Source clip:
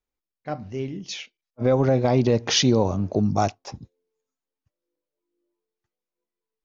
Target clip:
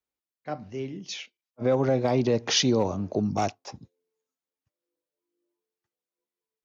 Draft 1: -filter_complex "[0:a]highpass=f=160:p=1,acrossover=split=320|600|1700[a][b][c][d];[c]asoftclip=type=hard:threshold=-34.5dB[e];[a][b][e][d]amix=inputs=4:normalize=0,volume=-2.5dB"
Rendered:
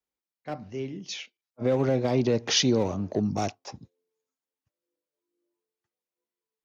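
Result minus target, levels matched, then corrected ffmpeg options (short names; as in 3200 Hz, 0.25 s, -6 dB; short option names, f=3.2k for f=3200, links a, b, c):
hard clip: distortion +9 dB
-filter_complex "[0:a]highpass=f=160:p=1,acrossover=split=320|600|1700[a][b][c][d];[c]asoftclip=type=hard:threshold=-24.5dB[e];[a][b][e][d]amix=inputs=4:normalize=0,volume=-2.5dB"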